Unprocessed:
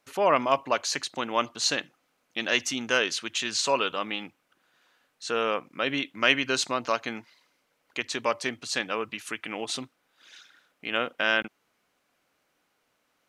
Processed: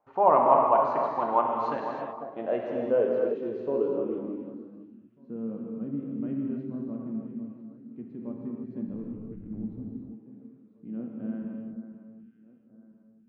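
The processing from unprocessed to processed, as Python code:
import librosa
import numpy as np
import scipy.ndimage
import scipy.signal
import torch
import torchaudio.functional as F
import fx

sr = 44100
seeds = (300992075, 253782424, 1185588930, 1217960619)

p1 = scipy.signal.sosfilt(scipy.signal.butter(2, 6800.0, 'lowpass', fs=sr, output='sos'), x)
p2 = p1 + fx.echo_alternate(p1, sr, ms=498, hz=1700.0, feedback_pct=56, wet_db=-10.5, dry=0)
p3 = fx.backlash(p2, sr, play_db=-27.5, at=(8.88, 9.8))
p4 = fx.filter_sweep_lowpass(p3, sr, from_hz=880.0, to_hz=220.0, start_s=1.73, end_s=5.19, q=3.4)
p5 = fx.rev_gated(p4, sr, seeds[0], gate_ms=350, shape='flat', drr_db=-1.0)
y = F.gain(torch.from_numpy(p5), -4.5).numpy()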